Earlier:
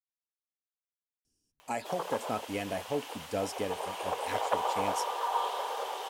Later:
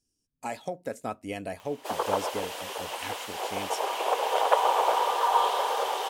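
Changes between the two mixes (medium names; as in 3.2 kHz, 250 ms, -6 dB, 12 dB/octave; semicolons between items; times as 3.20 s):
speech: entry -1.25 s; background +7.5 dB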